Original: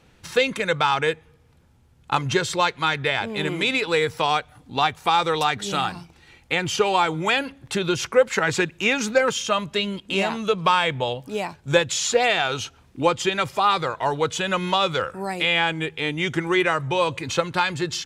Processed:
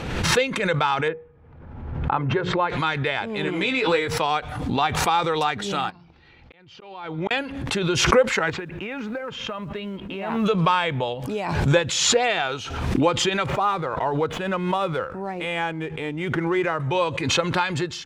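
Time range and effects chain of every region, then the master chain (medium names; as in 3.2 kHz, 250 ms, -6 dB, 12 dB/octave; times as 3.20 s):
1.08–2.70 s: low-pass 1.6 kHz + hum notches 60/120/180/240/300/360/420/480 Hz
3.45–4.08 s: treble shelf 9.9 kHz -6 dB + doubling 16 ms -4.5 dB
5.90–7.31 s: Chebyshev low-pass 4.7 kHz, order 3 + inverted gate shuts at -14 dBFS, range -41 dB + compression 10:1, threshold -43 dBFS
8.50–10.46 s: low-pass 2.3 kHz + short-mantissa float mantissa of 4-bit + compression 12:1, threshold -25 dBFS
13.46–16.80 s: median filter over 9 samples + treble shelf 2.5 kHz -8 dB
whole clip: low-pass 3.1 kHz 6 dB/octave; dynamic bell 110 Hz, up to -4 dB, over -41 dBFS, Q 1.4; swell ahead of each attack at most 43 dB/s; trim -1 dB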